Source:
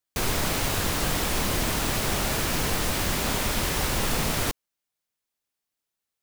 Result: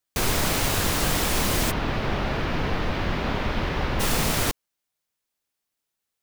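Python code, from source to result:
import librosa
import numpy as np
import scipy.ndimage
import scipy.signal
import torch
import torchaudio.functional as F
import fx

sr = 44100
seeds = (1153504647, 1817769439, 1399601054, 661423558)

y = fx.air_absorb(x, sr, metres=300.0, at=(1.7, 3.99), fade=0.02)
y = F.gain(torch.from_numpy(y), 2.5).numpy()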